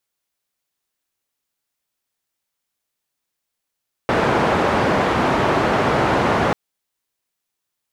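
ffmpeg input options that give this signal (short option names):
-f lavfi -i "anoisesrc=c=white:d=2.44:r=44100:seed=1,highpass=f=84,lowpass=f=1000,volume=0.6dB"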